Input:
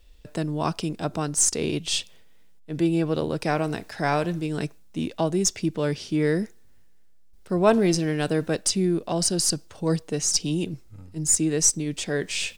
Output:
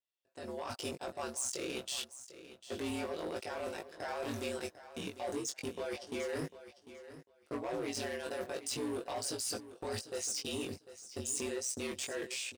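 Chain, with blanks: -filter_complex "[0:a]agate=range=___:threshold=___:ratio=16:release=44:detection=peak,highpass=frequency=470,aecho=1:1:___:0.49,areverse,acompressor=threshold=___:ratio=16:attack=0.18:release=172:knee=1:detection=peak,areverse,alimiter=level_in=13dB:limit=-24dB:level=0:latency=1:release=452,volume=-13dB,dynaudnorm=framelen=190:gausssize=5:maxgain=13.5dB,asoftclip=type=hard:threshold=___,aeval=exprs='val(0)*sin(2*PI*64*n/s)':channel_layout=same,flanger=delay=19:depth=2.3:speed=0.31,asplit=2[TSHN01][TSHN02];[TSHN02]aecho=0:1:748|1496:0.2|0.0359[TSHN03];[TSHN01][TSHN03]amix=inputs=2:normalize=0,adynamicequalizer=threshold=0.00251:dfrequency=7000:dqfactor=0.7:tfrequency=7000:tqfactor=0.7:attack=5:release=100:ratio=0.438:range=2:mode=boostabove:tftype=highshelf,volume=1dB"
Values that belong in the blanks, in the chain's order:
-27dB, -37dB, 4.8, -31dB, -29.5dB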